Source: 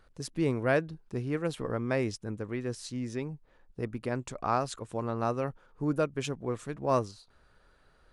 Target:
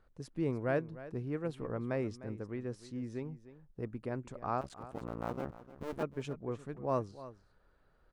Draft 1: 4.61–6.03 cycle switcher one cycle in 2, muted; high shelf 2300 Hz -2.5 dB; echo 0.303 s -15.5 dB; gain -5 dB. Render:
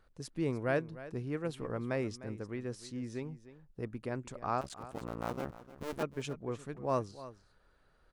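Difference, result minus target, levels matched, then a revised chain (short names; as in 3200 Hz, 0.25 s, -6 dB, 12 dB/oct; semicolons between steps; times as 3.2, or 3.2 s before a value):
4000 Hz band +6.0 dB
4.61–6.03 cycle switcher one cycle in 2, muted; high shelf 2300 Hz -11.5 dB; echo 0.303 s -15.5 dB; gain -5 dB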